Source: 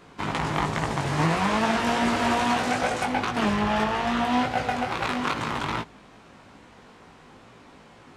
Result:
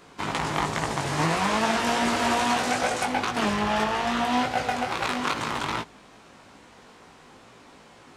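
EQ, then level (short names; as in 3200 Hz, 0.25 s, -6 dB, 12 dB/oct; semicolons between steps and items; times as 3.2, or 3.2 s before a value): tone controls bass -4 dB, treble +5 dB; 0.0 dB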